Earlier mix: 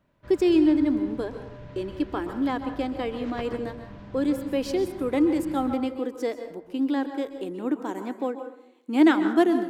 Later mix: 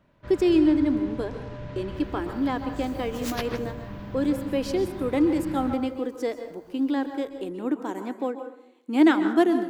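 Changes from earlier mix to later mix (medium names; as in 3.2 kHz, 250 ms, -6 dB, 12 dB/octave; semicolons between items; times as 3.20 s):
first sound +5.5 dB; second sound: remove tape spacing loss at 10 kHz 45 dB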